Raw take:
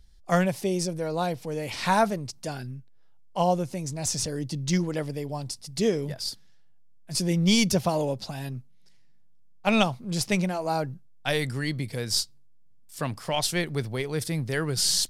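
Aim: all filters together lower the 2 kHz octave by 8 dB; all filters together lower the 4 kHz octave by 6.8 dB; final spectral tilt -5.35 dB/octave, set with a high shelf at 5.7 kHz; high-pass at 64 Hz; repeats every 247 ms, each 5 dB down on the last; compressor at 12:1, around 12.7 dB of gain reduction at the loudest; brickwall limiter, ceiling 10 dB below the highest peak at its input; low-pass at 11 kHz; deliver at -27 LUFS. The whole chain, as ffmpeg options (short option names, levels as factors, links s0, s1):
-af "highpass=64,lowpass=11000,equalizer=f=2000:t=o:g=-8.5,equalizer=f=4000:t=o:g=-3,highshelf=f=5700:g=-8,acompressor=threshold=0.0282:ratio=12,alimiter=level_in=2.11:limit=0.0631:level=0:latency=1,volume=0.473,aecho=1:1:247|494|741|988|1235|1482|1729:0.562|0.315|0.176|0.0988|0.0553|0.031|0.0173,volume=3.76"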